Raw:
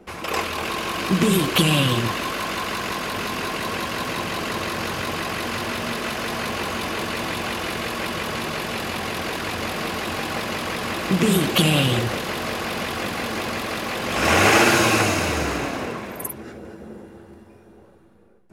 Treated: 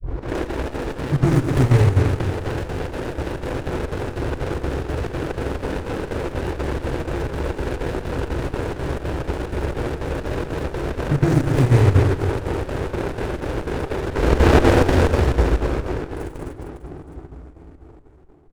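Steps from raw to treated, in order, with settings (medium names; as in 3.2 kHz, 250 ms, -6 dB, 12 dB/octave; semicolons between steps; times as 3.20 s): tape start-up on the opening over 0.35 s; static phaser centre 990 Hz, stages 6; on a send: reverse bouncing-ball echo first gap 90 ms, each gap 1.3×, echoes 5; on the sum: square tremolo 4.1 Hz, depth 60%, duty 75%; treble shelf 4.1 kHz -10 dB; pitch shift -4.5 st; bass shelf 100 Hz +8.5 dB; sliding maximum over 33 samples; trim +6 dB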